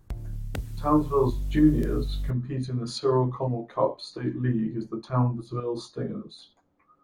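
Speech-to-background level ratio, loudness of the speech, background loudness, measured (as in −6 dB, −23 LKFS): 7.5 dB, −27.5 LKFS, −35.0 LKFS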